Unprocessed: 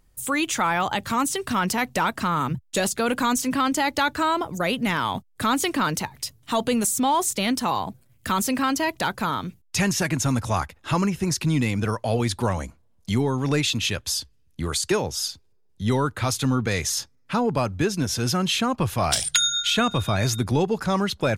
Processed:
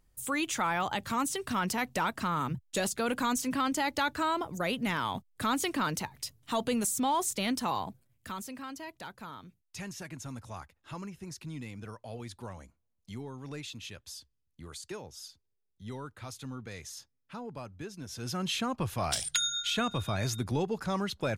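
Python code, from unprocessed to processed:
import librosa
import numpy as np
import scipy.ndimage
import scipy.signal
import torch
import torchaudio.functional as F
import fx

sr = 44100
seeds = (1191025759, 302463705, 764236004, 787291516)

y = fx.gain(x, sr, db=fx.line((7.83, -7.5), (8.53, -19.0), (18.0, -19.0), (18.46, -9.0)))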